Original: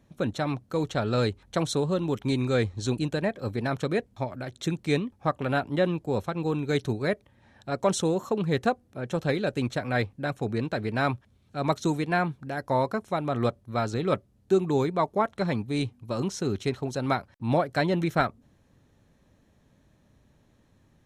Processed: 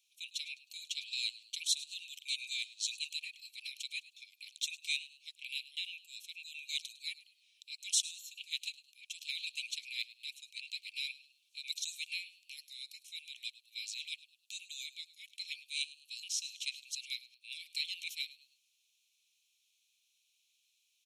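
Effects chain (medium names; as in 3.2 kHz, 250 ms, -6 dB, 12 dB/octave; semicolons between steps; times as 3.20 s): steep high-pass 2.4 kHz 96 dB/octave; on a send: frequency-shifting echo 104 ms, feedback 36%, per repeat +95 Hz, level -18 dB; on the sum: trim +2.5 dB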